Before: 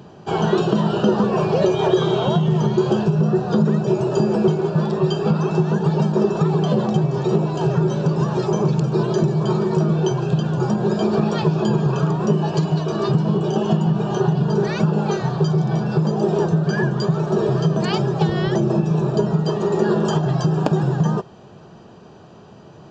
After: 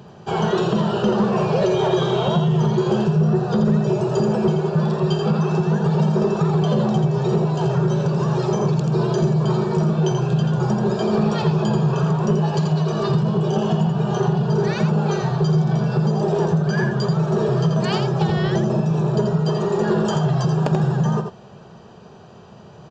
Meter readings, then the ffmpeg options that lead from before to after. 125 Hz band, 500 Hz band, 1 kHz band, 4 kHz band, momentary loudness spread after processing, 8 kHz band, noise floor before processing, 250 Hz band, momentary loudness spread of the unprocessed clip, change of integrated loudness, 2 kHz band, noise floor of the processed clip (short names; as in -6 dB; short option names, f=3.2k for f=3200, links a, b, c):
+0.5 dB, -1.0 dB, 0.0 dB, 0.0 dB, 2 LU, n/a, -43 dBFS, -0.5 dB, 2 LU, -0.5 dB, +0.5 dB, -43 dBFS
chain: -filter_complex "[0:a]equalizer=f=300:w=5.7:g=-11,asplit=2[a][b];[b]aecho=0:1:84:0.501[c];[a][c]amix=inputs=2:normalize=0,asoftclip=type=tanh:threshold=-8.5dB"